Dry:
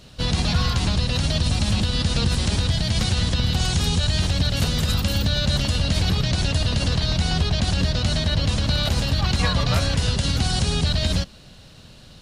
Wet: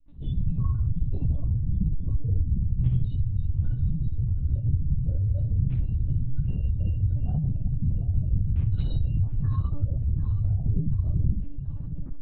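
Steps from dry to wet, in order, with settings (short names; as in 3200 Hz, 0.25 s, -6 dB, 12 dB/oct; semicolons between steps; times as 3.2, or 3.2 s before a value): spectral contrast raised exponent 3.9; gate with hold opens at -41 dBFS; reverse; compressor 20:1, threshold -34 dBFS, peak gain reduction 18 dB; reverse; LFO low-pass saw down 0.35 Hz 300–2600 Hz; tape echo 0.728 s, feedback 63%, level -11.5 dB, low-pass 2600 Hz; shoebox room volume 530 m³, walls furnished, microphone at 6.9 m; monotone LPC vocoder at 8 kHz 290 Hz; attack slew limiter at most 480 dB/s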